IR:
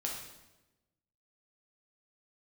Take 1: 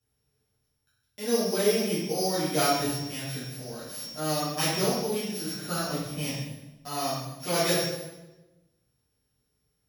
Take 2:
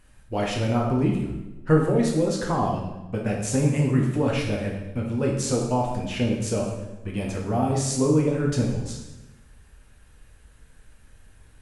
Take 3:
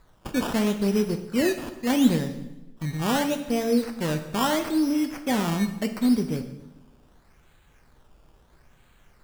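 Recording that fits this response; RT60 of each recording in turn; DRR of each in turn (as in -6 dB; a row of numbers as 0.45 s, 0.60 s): 2; 1.0 s, 1.0 s, 1.0 s; -11.0 dB, -1.5 dB, 7.0 dB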